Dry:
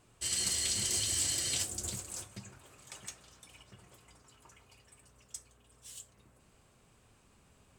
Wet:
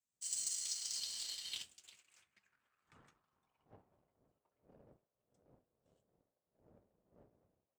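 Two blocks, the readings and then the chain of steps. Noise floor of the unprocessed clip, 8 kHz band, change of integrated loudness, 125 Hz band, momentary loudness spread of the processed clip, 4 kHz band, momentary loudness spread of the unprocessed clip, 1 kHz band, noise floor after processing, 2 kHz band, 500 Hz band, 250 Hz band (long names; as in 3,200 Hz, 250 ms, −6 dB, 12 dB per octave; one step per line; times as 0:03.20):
−66 dBFS, −10.0 dB, −8.0 dB, −24.5 dB, 8 LU, −8.5 dB, 20 LU, −16.0 dB, below −85 dBFS, −15.0 dB, −17.0 dB, −20.5 dB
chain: wind on the microphone 120 Hz −37 dBFS
band-pass filter sweep 6,800 Hz → 590 Hz, 0:00.47–0:04.22
power curve on the samples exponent 1.4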